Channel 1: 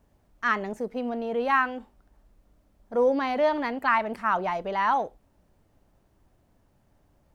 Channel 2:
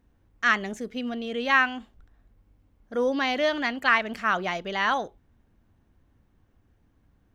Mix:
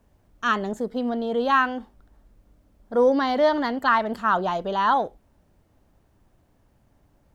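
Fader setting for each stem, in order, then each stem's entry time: +1.5, −4.0 decibels; 0.00, 0.00 seconds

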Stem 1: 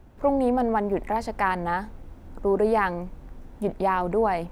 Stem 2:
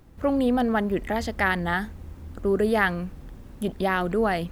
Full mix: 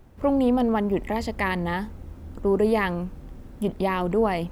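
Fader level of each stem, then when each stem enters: −2.5, −3.5 decibels; 0.00, 0.00 seconds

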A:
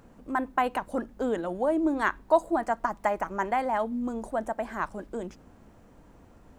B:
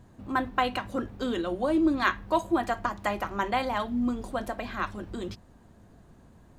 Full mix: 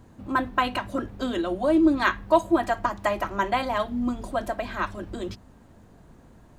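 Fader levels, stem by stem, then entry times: −4.0, +2.0 decibels; 0.00, 0.00 seconds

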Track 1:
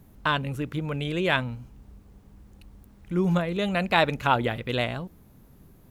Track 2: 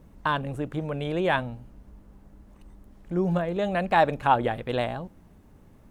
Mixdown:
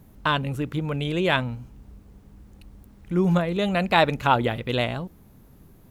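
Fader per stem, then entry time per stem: +1.5, −12.0 decibels; 0.00, 0.00 seconds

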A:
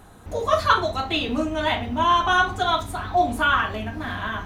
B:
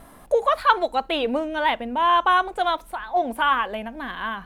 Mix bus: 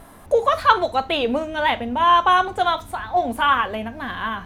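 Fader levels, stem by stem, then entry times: −7.5, +2.0 decibels; 0.00, 0.00 seconds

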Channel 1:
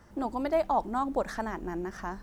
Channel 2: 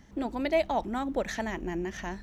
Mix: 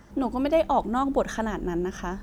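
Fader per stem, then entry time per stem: +3.0, −1.5 decibels; 0.00, 0.00 seconds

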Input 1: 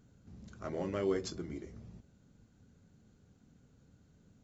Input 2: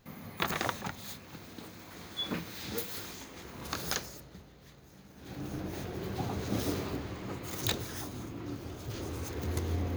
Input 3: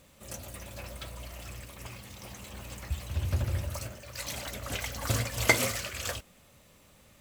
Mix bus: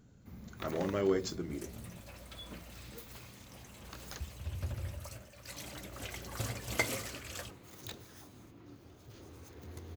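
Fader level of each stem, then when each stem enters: +2.5, −14.0, −9.0 decibels; 0.00, 0.20, 1.30 seconds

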